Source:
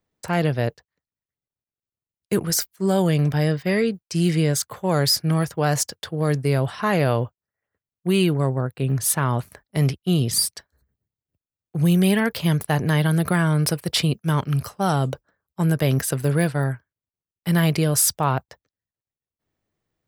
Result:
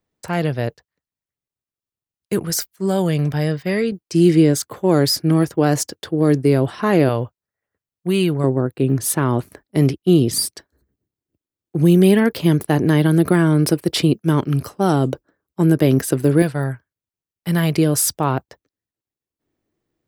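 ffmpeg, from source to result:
-af "asetnsamples=n=441:p=0,asendcmd='3.92 equalizer g 13.5;7.09 equalizer g 2.5;8.44 equalizer g 14;16.42 equalizer g 3;17.78 equalizer g 10',equalizer=f=320:t=o:w=0.95:g=2"

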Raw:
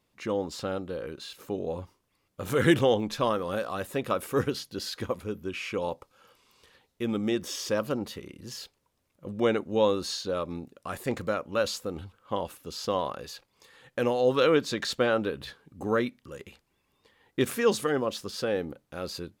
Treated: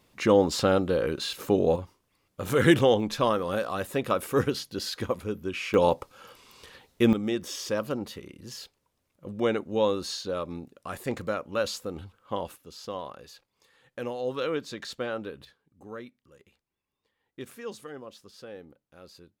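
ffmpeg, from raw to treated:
-af "asetnsamples=n=441:p=0,asendcmd='1.76 volume volume 2dB;5.74 volume volume 9.5dB;7.13 volume volume -1dB;12.56 volume volume -7.5dB;15.45 volume volume -14.5dB',volume=2.99"

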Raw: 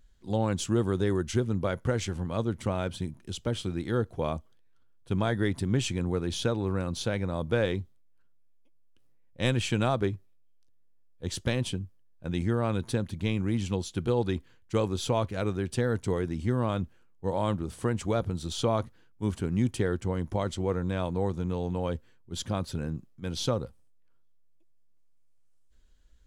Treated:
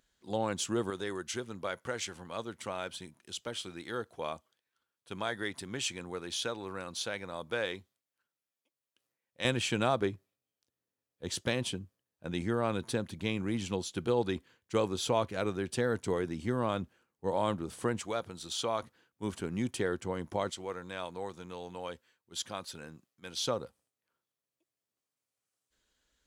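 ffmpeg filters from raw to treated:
-af "asetnsamples=n=441:p=0,asendcmd='0.9 highpass f 1100;9.45 highpass f 300;18.01 highpass f 960;18.82 highpass f 410;20.5 highpass f 1300;23.47 highpass f 540',highpass=f=490:p=1"

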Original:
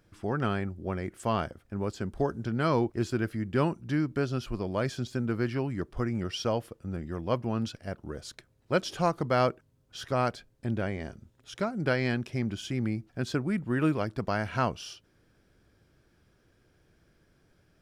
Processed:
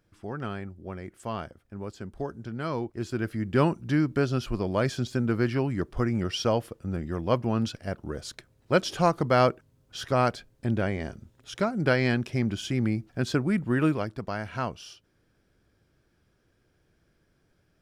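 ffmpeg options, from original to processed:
-af "volume=1.58,afade=t=in:st=2.93:d=0.67:silence=0.354813,afade=t=out:st=13.68:d=0.53:silence=0.446684"

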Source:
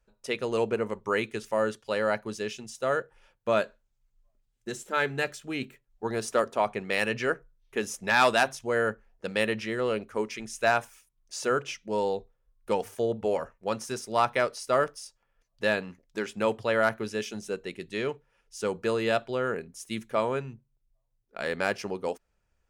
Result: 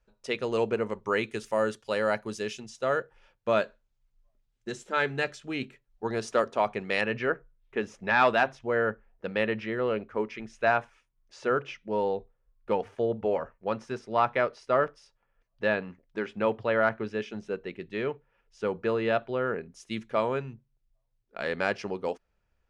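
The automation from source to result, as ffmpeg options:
-af "asetnsamples=n=441:p=0,asendcmd='1.28 lowpass f 11000;2.6 lowpass f 5700;7.01 lowpass f 2600;19.71 lowpass f 4700',lowpass=6400"

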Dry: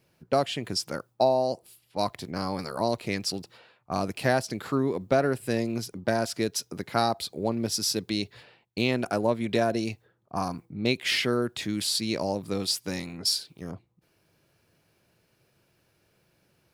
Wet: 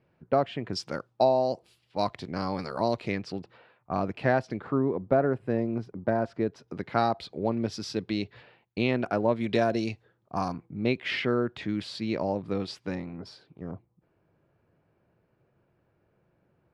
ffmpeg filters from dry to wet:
-af "asetnsamples=n=441:p=0,asendcmd='0.73 lowpass f 4200;3.12 lowpass f 2200;4.6 lowpass f 1300;6.68 lowpass f 2800;9.36 lowpass f 4800;10.53 lowpass f 2300;12.95 lowpass f 1300',lowpass=1900"

